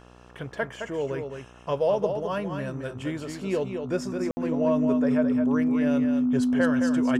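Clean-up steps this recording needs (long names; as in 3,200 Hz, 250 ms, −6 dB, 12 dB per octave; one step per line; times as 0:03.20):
hum removal 60.9 Hz, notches 23
notch filter 250 Hz, Q 30
ambience match 0:04.31–0:04.37
echo removal 215 ms −6.5 dB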